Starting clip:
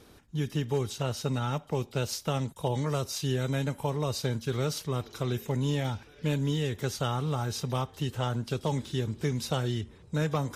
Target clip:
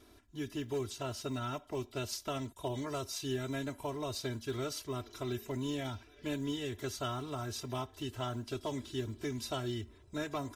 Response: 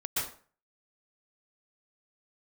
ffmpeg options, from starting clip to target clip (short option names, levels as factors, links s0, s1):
-af "aecho=1:1:3:0.91,acrusher=bits=9:mode=log:mix=0:aa=0.000001,volume=0.398"